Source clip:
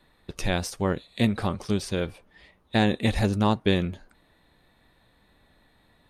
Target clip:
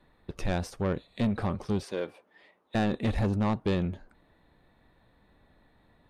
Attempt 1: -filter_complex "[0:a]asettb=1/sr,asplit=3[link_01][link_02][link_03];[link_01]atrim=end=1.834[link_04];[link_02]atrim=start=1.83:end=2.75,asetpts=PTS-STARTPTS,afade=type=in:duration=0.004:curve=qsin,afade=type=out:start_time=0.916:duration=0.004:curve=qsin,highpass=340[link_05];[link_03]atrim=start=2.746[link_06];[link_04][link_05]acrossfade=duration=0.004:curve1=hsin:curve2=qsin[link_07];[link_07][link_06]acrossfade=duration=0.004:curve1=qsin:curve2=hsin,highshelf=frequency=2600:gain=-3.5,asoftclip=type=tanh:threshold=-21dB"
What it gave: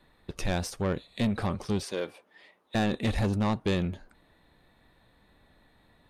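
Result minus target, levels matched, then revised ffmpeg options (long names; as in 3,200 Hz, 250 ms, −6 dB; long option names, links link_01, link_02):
4,000 Hz band +4.5 dB
-filter_complex "[0:a]asettb=1/sr,asplit=3[link_01][link_02][link_03];[link_01]atrim=end=1.834[link_04];[link_02]atrim=start=1.83:end=2.75,asetpts=PTS-STARTPTS,afade=type=in:duration=0.004:curve=qsin,afade=type=out:start_time=0.916:duration=0.004:curve=qsin,highpass=340[link_05];[link_03]atrim=start=2.746[link_06];[link_04][link_05]acrossfade=duration=0.004:curve1=hsin:curve2=qsin[link_07];[link_07][link_06]acrossfade=duration=0.004:curve1=qsin:curve2=hsin,highshelf=frequency=2600:gain=-12,asoftclip=type=tanh:threshold=-21dB"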